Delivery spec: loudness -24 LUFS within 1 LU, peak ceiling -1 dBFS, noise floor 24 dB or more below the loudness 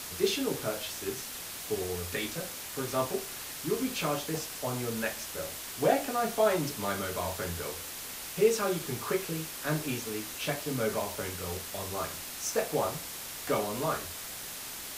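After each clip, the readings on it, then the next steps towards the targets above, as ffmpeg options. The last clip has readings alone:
noise floor -41 dBFS; noise floor target -57 dBFS; loudness -32.5 LUFS; peak -12.0 dBFS; loudness target -24.0 LUFS
-> -af "afftdn=nr=16:nf=-41"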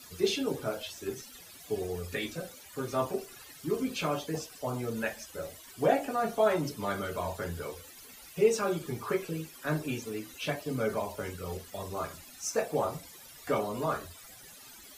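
noise floor -51 dBFS; noise floor target -57 dBFS
-> -af "afftdn=nr=6:nf=-51"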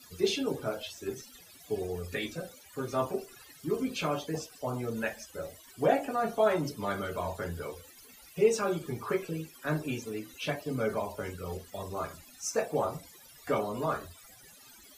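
noise floor -55 dBFS; noise floor target -58 dBFS
-> -af "afftdn=nr=6:nf=-55"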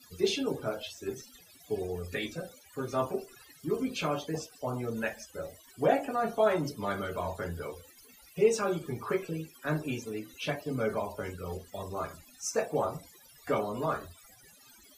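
noise floor -58 dBFS; loudness -33.5 LUFS; peak -12.0 dBFS; loudness target -24.0 LUFS
-> -af "volume=9.5dB"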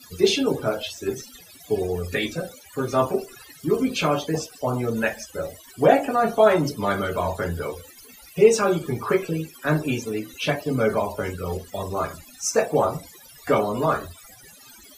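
loudness -24.0 LUFS; peak -2.5 dBFS; noise floor -48 dBFS

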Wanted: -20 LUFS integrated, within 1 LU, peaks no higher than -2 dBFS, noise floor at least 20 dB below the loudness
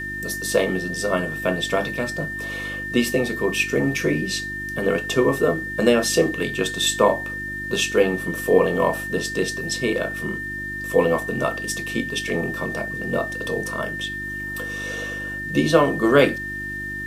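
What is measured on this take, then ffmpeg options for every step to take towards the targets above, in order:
hum 50 Hz; harmonics up to 350 Hz; hum level -34 dBFS; steady tone 1800 Hz; tone level -28 dBFS; loudness -22.5 LUFS; peak -2.0 dBFS; loudness target -20.0 LUFS
-> -af "bandreject=f=50:t=h:w=4,bandreject=f=100:t=h:w=4,bandreject=f=150:t=h:w=4,bandreject=f=200:t=h:w=4,bandreject=f=250:t=h:w=4,bandreject=f=300:t=h:w=4,bandreject=f=350:t=h:w=4"
-af "bandreject=f=1.8k:w=30"
-af "volume=2.5dB,alimiter=limit=-2dB:level=0:latency=1"

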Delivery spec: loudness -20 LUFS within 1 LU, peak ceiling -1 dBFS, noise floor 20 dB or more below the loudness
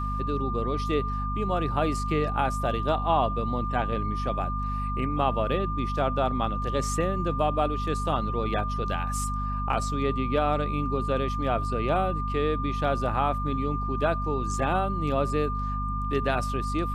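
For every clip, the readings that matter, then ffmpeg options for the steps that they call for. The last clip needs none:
hum 50 Hz; harmonics up to 250 Hz; hum level -28 dBFS; steady tone 1200 Hz; tone level -31 dBFS; loudness -27.5 LUFS; peak -10.5 dBFS; loudness target -20.0 LUFS
-> -af "bandreject=f=50:t=h:w=6,bandreject=f=100:t=h:w=6,bandreject=f=150:t=h:w=6,bandreject=f=200:t=h:w=6,bandreject=f=250:t=h:w=6"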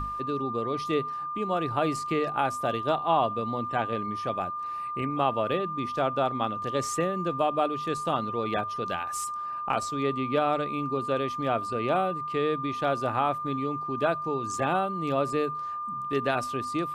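hum none; steady tone 1200 Hz; tone level -31 dBFS
-> -af "bandreject=f=1.2k:w=30"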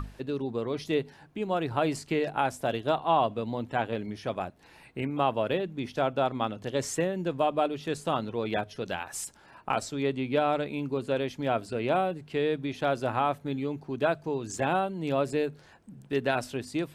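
steady tone none; loudness -30.0 LUFS; peak -12.0 dBFS; loudness target -20.0 LUFS
-> -af "volume=10dB"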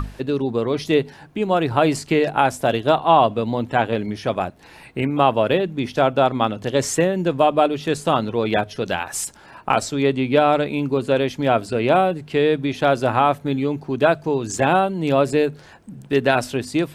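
loudness -20.0 LUFS; peak -2.0 dBFS; noise floor -45 dBFS

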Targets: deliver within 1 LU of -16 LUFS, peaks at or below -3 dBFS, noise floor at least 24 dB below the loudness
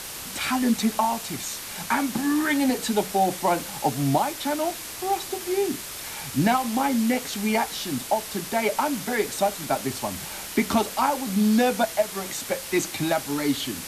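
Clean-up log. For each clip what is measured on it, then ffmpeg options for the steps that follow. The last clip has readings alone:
noise floor -36 dBFS; noise floor target -49 dBFS; loudness -25.0 LUFS; peak -9.5 dBFS; loudness target -16.0 LUFS
-> -af "afftdn=nr=13:nf=-36"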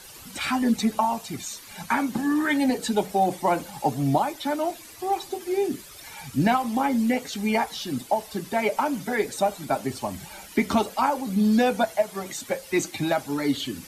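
noise floor -45 dBFS; noise floor target -50 dBFS
-> -af "afftdn=nr=6:nf=-45"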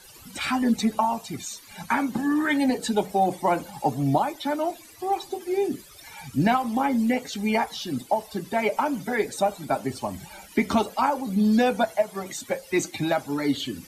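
noise floor -48 dBFS; noise floor target -50 dBFS
-> -af "afftdn=nr=6:nf=-48"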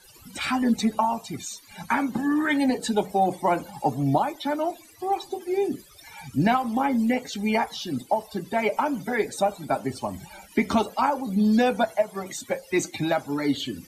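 noise floor -51 dBFS; loudness -25.5 LUFS; peak -10.0 dBFS; loudness target -16.0 LUFS
-> -af "volume=9.5dB,alimiter=limit=-3dB:level=0:latency=1"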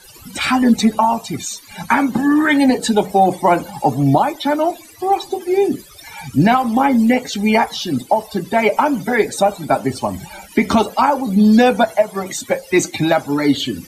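loudness -16.5 LUFS; peak -3.0 dBFS; noise floor -41 dBFS

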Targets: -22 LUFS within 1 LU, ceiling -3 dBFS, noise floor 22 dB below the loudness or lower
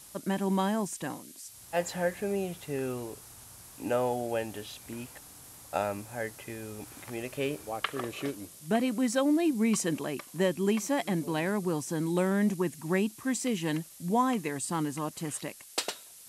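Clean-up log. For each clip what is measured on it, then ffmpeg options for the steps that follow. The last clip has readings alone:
noise floor -51 dBFS; noise floor target -54 dBFS; loudness -31.5 LUFS; peak -13.0 dBFS; loudness target -22.0 LUFS
-> -af "afftdn=nr=6:nf=-51"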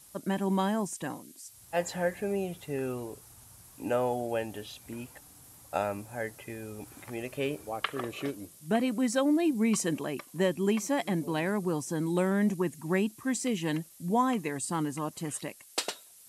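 noise floor -55 dBFS; loudness -31.5 LUFS; peak -13.0 dBFS; loudness target -22.0 LUFS
-> -af "volume=9.5dB"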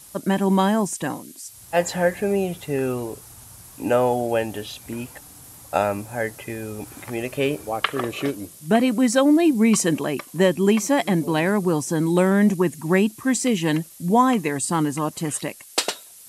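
loudness -22.0 LUFS; peak -3.5 dBFS; noise floor -45 dBFS

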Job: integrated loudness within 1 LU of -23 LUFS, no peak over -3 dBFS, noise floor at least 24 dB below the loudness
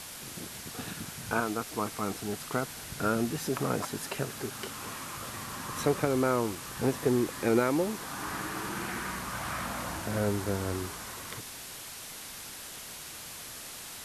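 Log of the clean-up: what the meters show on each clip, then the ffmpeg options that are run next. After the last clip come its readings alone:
noise floor -44 dBFS; noise floor target -57 dBFS; loudness -33.0 LUFS; peak -13.0 dBFS; loudness target -23.0 LUFS
-> -af "afftdn=nr=13:nf=-44"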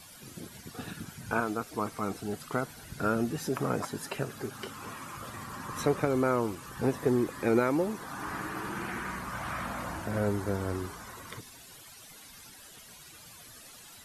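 noise floor -51 dBFS; noise floor target -57 dBFS
-> -af "afftdn=nr=6:nf=-51"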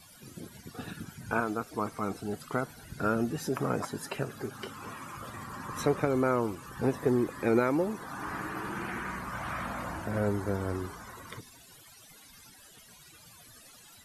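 noise floor -55 dBFS; noise floor target -57 dBFS
-> -af "afftdn=nr=6:nf=-55"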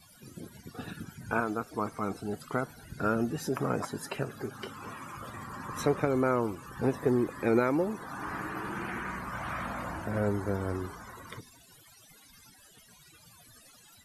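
noise floor -58 dBFS; loudness -32.5 LUFS; peak -13.0 dBFS; loudness target -23.0 LUFS
-> -af "volume=9.5dB"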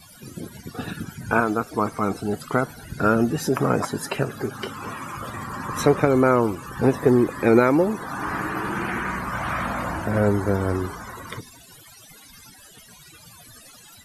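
loudness -23.0 LUFS; peak -3.5 dBFS; noise floor -48 dBFS

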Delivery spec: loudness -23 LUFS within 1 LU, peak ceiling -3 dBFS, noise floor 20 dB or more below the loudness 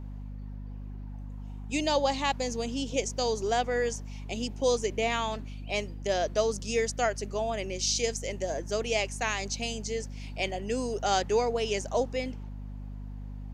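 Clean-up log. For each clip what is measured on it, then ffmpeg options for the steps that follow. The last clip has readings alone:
hum 50 Hz; harmonics up to 250 Hz; hum level -37 dBFS; loudness -30.0 LUFS; peak -13.0 dBFS; loudness target -23.0 LUFS
-> -af "bandreject=f=50:t=h:w=4,bandreject=f=100:t=h:w=4,bandreject=f=150:t=h:w=4,bandreject=f=200:t=h:w=4,bandreject=f=250:t=h:w=4"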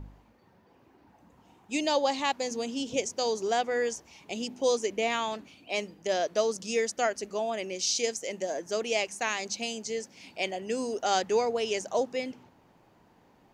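hum none; loudness -30.0 LUFS; peak -13.5 dBFS; loudness target -23.0 LUFS
-> -af "volume=7dB"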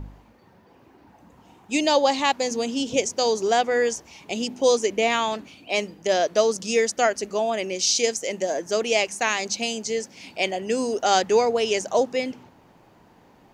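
loudness -23.0 LUFS; peak -6.5 dBFS; noise floor -55 dBFS

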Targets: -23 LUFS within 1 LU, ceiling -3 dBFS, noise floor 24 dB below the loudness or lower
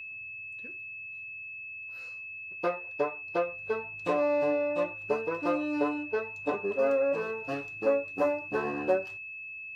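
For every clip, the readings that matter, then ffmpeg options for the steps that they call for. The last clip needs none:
steady tone 2600 Hz; tone level -39 dBFS; loudness -31.5 LUFS; peak -14.5 dBFS; loudness target -23.0 LUFS
-> -af "bandreject=f=2.6k:w=30"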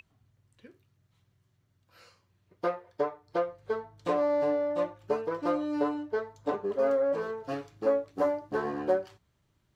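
steady tone none; loudness -31.0 LUFS; peak -14.5 dBFS; loudness target -23.0 LUFS
-> -af "volume=8dB"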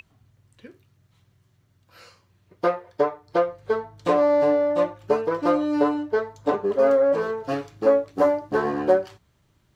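loudness -23.0 LUFS; peak -6.5 dBFS; noise floor -65 dBFS

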